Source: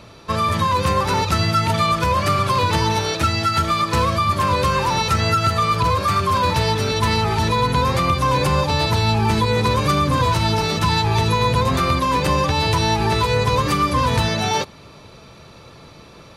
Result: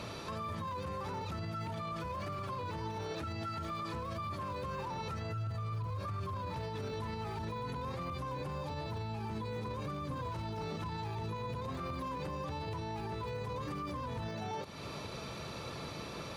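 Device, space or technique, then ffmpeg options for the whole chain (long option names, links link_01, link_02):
podcast mastering chain: -filter_complex "[0:a]asettb=1/sr,asplit=3[link_01][link_02][link_03];[link_01]atrim=end=5.324[link_04];[link_02]atrim=start=5.32:end=6.46,asetpts=PTS-STARTPTS,afade=type=in:duration=0.004:curve=qsin,afade=type=out:start_time=1.136:duration=0.004:curve=qsin,equalizer=frequency=110:width_type=o:width=0.53:gain=13.5[link_05];[link_03]atrim=start=6.456[link_06];[link_04][link_05]acrossfade=duration=0.004:curve1=hsin:curve2=qsin[link_07];[link_07][link_06]acrossfade=duration=0.004:curve1=qsin:curve2=hsin,highpass=frequency=69:poles=1,deesser=0.9,acompressor=threshold=-34dB:ratio=2.5,alimiter=level_in=8.5dB:limit=-24dB:level=0:latency=1:release=61,volume=-8.5dB,volume=1dB" -ar 48000 -c:a libmp3lame -b:a 96k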